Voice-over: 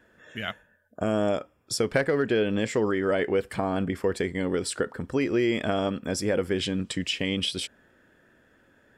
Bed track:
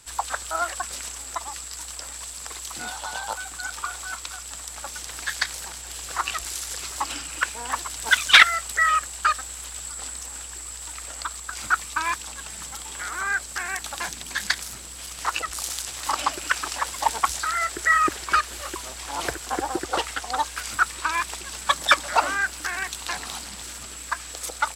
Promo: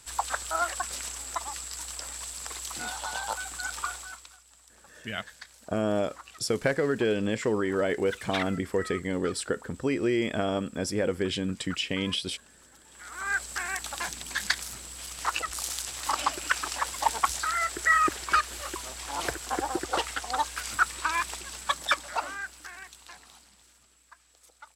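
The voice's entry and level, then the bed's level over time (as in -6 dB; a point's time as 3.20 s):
4.70 s, -2.0 dB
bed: 3.89 s -2 dB
4.44 s -21 dB
12.82 s -21 dB
13.34 s -3 dB
21.28 s -3 dB
24.04 s -25.5 dB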